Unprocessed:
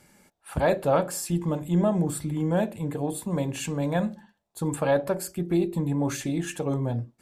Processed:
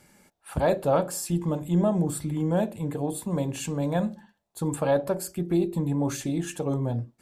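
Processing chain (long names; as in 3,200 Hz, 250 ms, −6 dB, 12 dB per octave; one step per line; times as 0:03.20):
dynamic equaliser 2,000 Hz, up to −5 dB, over −46 dBFS, Q 1.3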